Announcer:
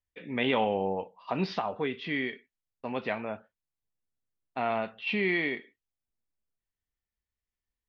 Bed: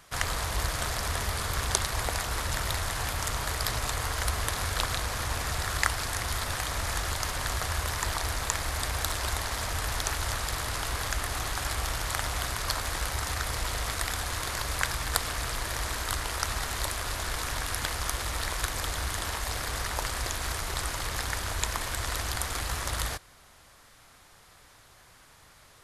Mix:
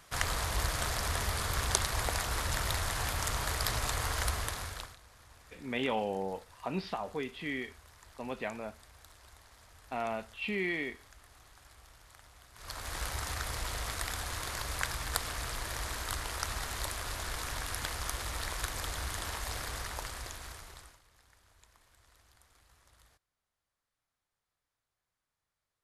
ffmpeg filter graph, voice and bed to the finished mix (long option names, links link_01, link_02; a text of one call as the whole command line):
ffmpeg -i stem1.wav -i stem2.wav -filter_complex "[0:a]adelay=5350,volume=-5.5dB[link_01];[1:a]volume=18.5dB,afade=type=out:start_time=4.21:duration=0.75:silence=0.0630957,afade=type=in:start_time=12.53:duration=0.49:silence=0.0891251,afade=type=out:start_time=19.57:duration=1.44:silence=0.0421697[link_02];[link_01][link_02]amix=inputs=2:normalize=0" out.wav